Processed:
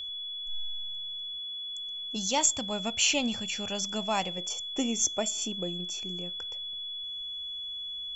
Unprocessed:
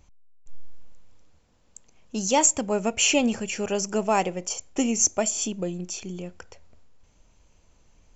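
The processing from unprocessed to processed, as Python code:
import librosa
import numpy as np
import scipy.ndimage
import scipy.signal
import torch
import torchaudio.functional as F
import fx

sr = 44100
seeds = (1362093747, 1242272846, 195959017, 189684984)

y = fx.graphic_eq_15(x, sr, hz=(100, 400, 4000), db=(5, -9, 9), at=(2.16, 4.38))
y = y + 10.0 ** (-29.0 / 20.0) * np.sin(2.0 * np.pi * 3400.0 * np.arange(len(y)) / sr)
y = y * librosa.db_to_amplitude(-6.0)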